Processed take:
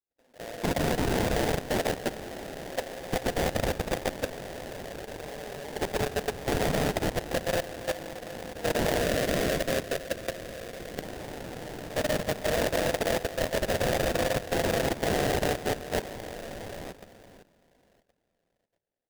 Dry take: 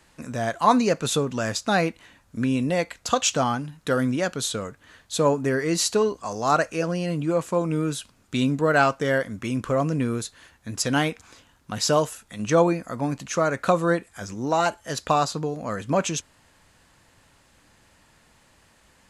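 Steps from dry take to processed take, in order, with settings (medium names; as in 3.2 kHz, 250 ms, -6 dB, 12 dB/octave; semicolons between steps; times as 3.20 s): local Wiener filter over 41 samples; flange 0.22 Hz, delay 7 ms, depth 7.8 ms, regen -20%; expander -57 dBFS; high-pass 480 Hz 24 dB/octave; bouncing-ball echo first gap 320 ms, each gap 0.65×, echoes 5; reverberation RT60 2.6 s, pre-delay 80 ms, DRR -2 dB; sample-rate reducer 1.2 kHz, jitter 20%; level held to a coarse grid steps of 13 dB; 9.02–11.03 s: peaking EQ 860 Hz -13 dB 0.25 oct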